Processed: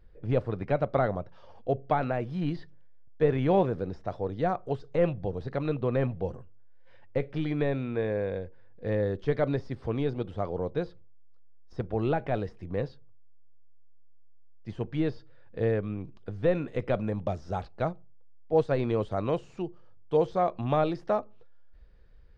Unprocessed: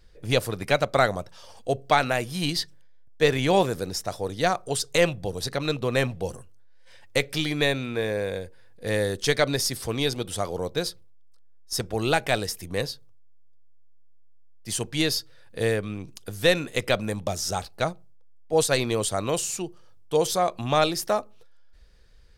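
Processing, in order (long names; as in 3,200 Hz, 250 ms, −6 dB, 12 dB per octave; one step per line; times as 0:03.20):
de-essing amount 80%
head-to-tape spacing loss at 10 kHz 43 dB, from 0:16.67 at 10 kHz 35 dB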